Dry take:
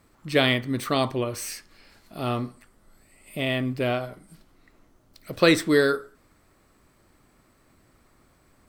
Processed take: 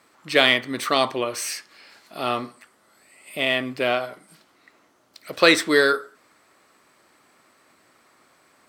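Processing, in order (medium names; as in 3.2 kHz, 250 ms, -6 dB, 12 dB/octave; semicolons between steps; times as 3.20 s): frequency weighting A; in parallel at -10 dB: saturation -17.5 dBFS, distortion -11 dB; on the sum: trim +3.5 dB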